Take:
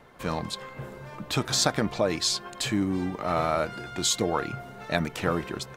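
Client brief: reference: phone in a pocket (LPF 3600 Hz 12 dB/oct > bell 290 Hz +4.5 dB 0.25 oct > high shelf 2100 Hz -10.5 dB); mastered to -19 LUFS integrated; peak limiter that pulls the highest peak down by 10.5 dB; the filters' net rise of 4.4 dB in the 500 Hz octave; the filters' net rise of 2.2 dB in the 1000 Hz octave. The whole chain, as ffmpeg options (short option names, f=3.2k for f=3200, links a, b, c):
-af "equalizer=f=500:t=o:g=5,equalizer=f=1k:t=o:g=4,alimiter=limit=-14dB:level=0:latency=1,lowpass=3.6k,equalizer=f=290:t=o:w=0.25:g=4.5,highshelf=f=2.1k:g=-10.5,volume=10dB"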